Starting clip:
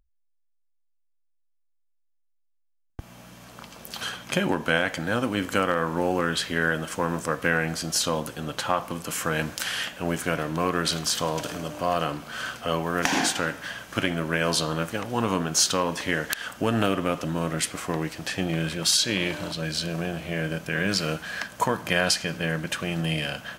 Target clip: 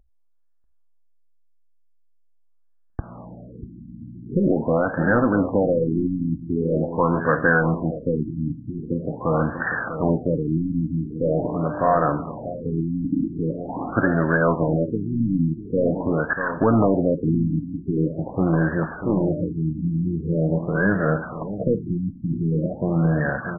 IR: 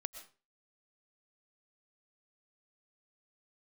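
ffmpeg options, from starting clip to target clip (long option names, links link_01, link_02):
-filter_complex "[0:a]asplit=2[link_01][link_02];[link_02]aeval=exprs='0.0794*(abs(mod(val(0)/0.0794+3,4)-2)-1)':channel_layout=same,volume=-5dB[link_03];[link_01][link_03]amix=inputs=2:normalize=0,asplit=2[link_04][link_05];[link_05]adelay=641.4,volume=-10dB,highshelf=frequency=4000:gain=-14.4[link_06];[link_04][link_06]amix=inputs=2:normalize=0,afftfilt=real='re*lt(b*sr/1024,310*pow(1900/310,0.5+0.5*sin(2*PI*0.44*pts/sr)))':imag='im*lt(b*sr/1024,310*pow(1900/310,0.5+0.5*sin(2*PI*0.44*pts/sr)))':win_size=1024:overlap=0.75,volume=5dB"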